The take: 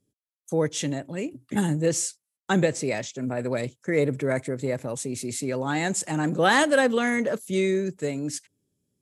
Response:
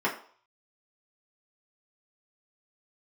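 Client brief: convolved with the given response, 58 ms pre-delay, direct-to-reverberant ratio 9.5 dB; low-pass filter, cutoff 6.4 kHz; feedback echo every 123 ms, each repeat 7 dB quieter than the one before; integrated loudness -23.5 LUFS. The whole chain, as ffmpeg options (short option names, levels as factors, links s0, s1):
-filter_complex "[0:a]lowpass=6400,aecho=1:1:123|246|369|492|615:0.447|0.201|0.0905|0.0407|0.0183,asplit=2[s0][s1];[1:a]atrim=start_sample=2205,adelay=58[s2];[s1][s2]afir=irnorm=-1:irlink=0,volume=0.0891[s3];[s0][s3]amix=inputs=2:normalize=0,volume=1.12"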